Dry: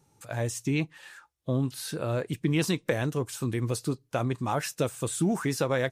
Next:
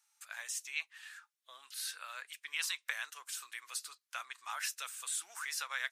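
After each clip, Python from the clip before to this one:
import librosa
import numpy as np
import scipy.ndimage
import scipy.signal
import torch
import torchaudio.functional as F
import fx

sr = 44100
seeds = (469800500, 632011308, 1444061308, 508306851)

y = scipy.signal.sosfilt(scipy.signal.butter(4, 1300.0, 'highpass', fs=sr, output='sos'), x)
y = y * librosa.db_to_amplitude(-2.5)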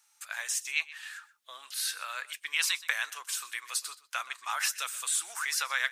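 y = x + 10.0 ** (-18.5 / 20.0) * np.pad(x, (int(125 * sr / 1000.0), 0))[:len(x)]
y = y * librosa.db_to_amplitude(8.0)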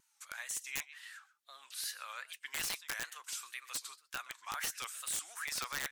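y = fx.wow_flutter(x, sr, seeds[0], rate_hz=2.1, depth_cents=140.0)
y = (np.mod(10.0 ** (20.5 / 20.0) * y + 1.0, 2.0) - 1.0) / 10.0 ** (20.5 / 20.0)
y = y * librosa.db_to_amplitude(-7.5)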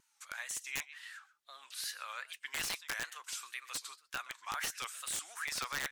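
y = fx.high_shelf(x, sr, hz=8000.0, db=-6.0)
y = y * librosa.db_to_amplitude(2.0)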